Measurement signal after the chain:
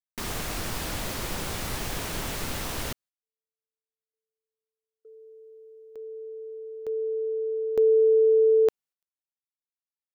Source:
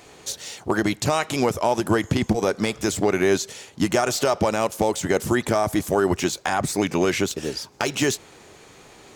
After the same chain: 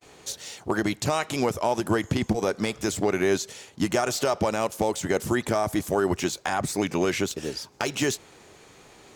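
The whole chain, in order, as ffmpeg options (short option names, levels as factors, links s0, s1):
-af "agate=range=0.0178:threshold=0.00316:ratio=16:detection=peak,volume=0.668"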